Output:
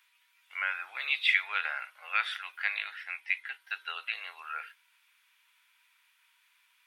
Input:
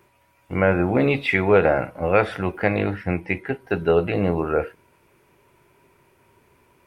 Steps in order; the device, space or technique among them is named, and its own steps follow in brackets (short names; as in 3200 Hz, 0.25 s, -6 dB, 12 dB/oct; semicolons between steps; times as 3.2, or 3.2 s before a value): headphones lying on a table (HPF 1400 Hz 24 dB/oct; bell 3500 Hz +9.5 dB 0.6 oct); gain -4.5 dB